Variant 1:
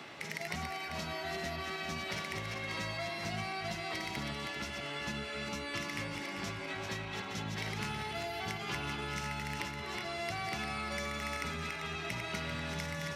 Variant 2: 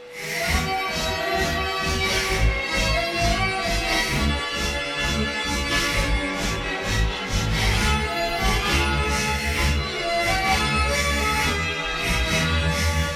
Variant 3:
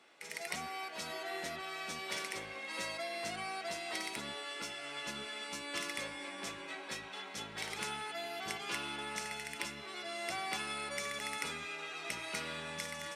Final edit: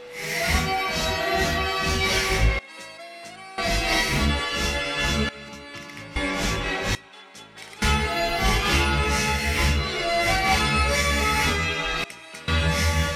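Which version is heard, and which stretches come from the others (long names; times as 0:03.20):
2
0:02.59–0:03.58: punch in from 3
0:05.29–0:06.16: punch in from 1
0:06.95–0:07.82: punch in from 3
0:12.04–0:12.48: punch in from 3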